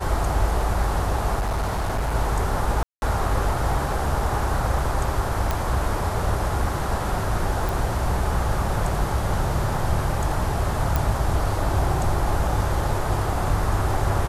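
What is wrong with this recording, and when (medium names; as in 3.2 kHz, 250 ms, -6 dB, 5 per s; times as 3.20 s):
1.39–2.15 s: clipped -20.5 dBFS
2.83–3.02 s: dropout 191 ms
5.51 s: pop
7.69 s: pop
10.96 s: pop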